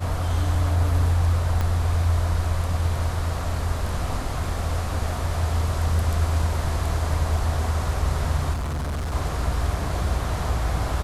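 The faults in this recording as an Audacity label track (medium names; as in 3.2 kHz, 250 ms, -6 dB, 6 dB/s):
1.610000	1.610000	pop -13 dBFS
8.530000	9.150000	clipped -24.5 dBFS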